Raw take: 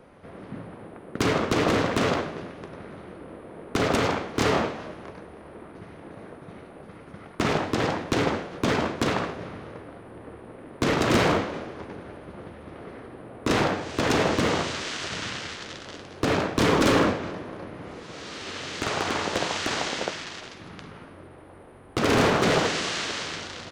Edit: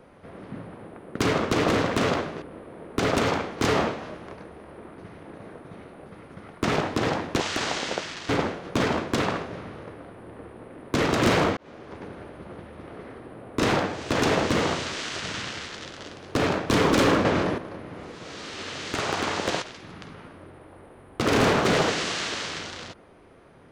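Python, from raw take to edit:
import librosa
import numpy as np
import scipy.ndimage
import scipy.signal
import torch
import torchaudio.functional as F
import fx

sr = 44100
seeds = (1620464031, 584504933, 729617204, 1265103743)

y = fx.edit(x, sr, fx.cut(start_s=2.42, length_s=0.77),
    fx.fade_in_span(start_s=11.45, length_s=0.47),
    fx.clip_gain(start_s=17.13, length_s=0.33, db=9.5),
    fx.move(start_s=19.5, length_s=0.89, to_s=8.17), tone=tone)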